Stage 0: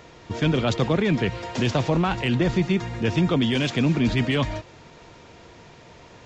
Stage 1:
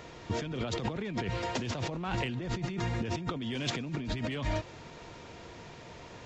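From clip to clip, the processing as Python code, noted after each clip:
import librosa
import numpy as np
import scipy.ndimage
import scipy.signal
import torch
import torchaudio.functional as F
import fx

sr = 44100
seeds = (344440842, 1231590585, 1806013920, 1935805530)

y = fx.over_compress(x, sr, threshold_db=-28.0, ratio=-1.0)
y = F.gain(torch.from_numpy(y), -6.0).numpy()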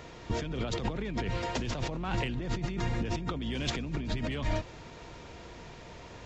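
y = fx.octave_divider(x, sr, octaves=2, level_db=-2.0)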